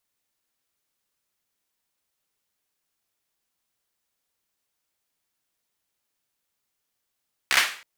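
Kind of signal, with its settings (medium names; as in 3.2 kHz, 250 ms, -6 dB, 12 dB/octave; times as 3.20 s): hand clap length 0.32 s, bursts 5, apart 15 ms, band 2 kHz, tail 0.42 s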